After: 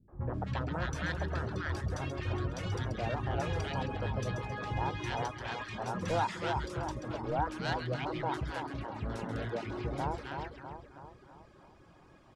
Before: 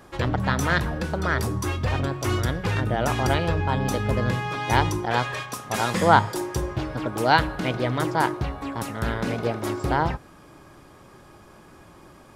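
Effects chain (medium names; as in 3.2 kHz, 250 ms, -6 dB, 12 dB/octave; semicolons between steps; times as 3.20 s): two-band feedback delay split 1.3 kHz, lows 325 ms, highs 134 ms, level -7 dB; reverb removal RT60 0.63 s; saturation -13.5 dBFS, distortion -14 dB; distance through air 91 m; three bands offset in time lows, mids, highs 80/340 ms, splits 260/1300 Hz; trim -8 dB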